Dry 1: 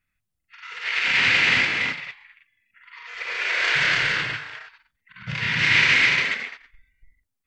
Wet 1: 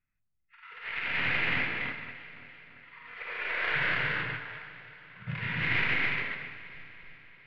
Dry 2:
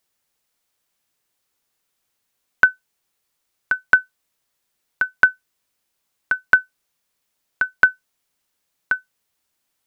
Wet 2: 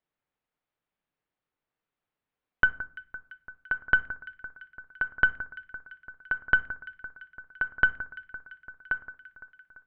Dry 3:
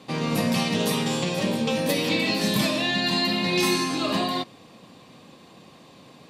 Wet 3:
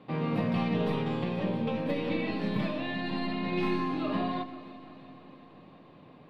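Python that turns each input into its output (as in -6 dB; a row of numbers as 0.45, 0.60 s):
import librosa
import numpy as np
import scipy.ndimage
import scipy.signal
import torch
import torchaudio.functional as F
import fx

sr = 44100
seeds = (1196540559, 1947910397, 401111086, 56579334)

y = fx.tracing_dist(x, sr, depth_ms=0.03)
y = fx.rider(y, sr, range_db=10, speed_s=2.0)
y = fx.air_absorb(y, sr, metres=470.0)
y = fx.echo_alternate(y, sr, ms=170, hz=1700.0, feedback_pct=78, wet_db=-14.0)
y = fx.room_shoebox(y, sr, seeds[0], volume_m3=450.0, walls='furnished', distance_m=0.43)
y = y * 10.0 ** (-5.5 / 20.0)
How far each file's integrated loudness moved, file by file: -10.5, -9.0, -7.5 LU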